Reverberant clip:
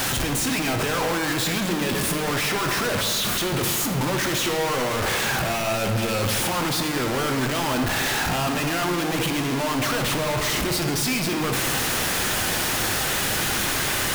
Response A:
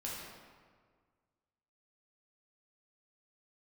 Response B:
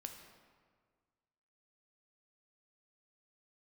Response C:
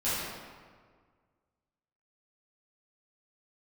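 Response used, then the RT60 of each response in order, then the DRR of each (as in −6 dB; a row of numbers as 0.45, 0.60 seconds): B; 1.7, 1.7, 1.7 seconds; −6.0, 4.0, −14.0 decibels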